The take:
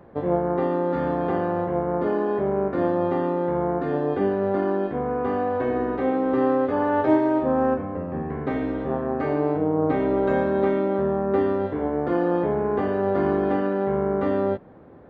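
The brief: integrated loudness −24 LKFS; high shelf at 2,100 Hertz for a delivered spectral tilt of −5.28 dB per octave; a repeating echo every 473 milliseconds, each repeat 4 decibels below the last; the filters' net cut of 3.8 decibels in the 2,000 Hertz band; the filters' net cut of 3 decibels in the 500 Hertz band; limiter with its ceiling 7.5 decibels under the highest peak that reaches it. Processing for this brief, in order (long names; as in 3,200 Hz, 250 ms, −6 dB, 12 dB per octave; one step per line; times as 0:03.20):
parametric band 500 Hz −3.5 dB
parametric band 2,000 Hz −3 dB
high-shelf EQ 2,100 Hz −3.5 dB
brickwall limiter −16.5 dBFS
repeating echo 473 ms, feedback 63%, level −4 dB
level +1.5 dB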